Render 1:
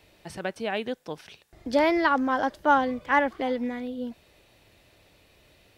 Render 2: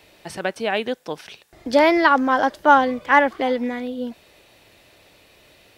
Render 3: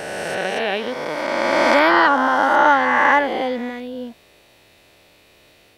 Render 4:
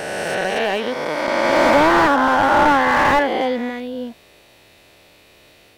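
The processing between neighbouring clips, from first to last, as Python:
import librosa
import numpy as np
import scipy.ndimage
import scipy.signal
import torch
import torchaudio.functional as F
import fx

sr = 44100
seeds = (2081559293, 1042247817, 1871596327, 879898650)

y1 = fx.low_shelf(x, sr, hz=170.0, db=-9.0)
y1 = F.gain(torch.from_numpy(y1), 7.5).numpy()
y2 = fx.spec_swells(y1, sr, rise_s=2.83)
y2 = F.gain(torch.from_numpy(y2), -3.5).numpy()
y3 = fx.slew_limit(y2, sr, full_power_hz=210.0)
y3 = F.gain(torch.from_numpy(y3), 2.5).numpy()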